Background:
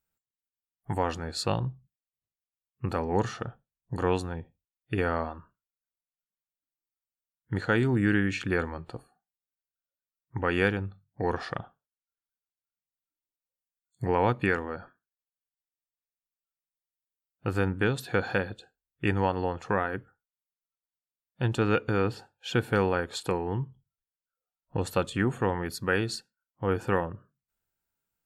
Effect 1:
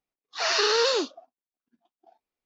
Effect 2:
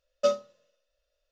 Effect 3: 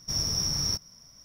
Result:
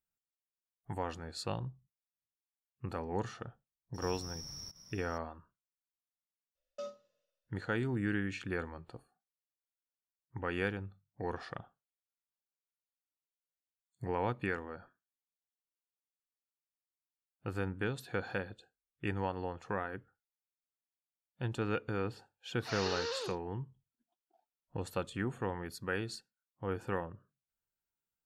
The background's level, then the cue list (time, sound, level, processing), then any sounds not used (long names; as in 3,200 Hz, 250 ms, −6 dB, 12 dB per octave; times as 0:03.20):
background −9.5 dB
0:03.94: mix in 3 −4.5 dB + downward compressor 5 to 1, threshold −40 dBFS
0:06.55: mix in 2 −13 dB + brickwall limiter −20.5 dBFS
0:22.27: mix in 1 −15.5 dB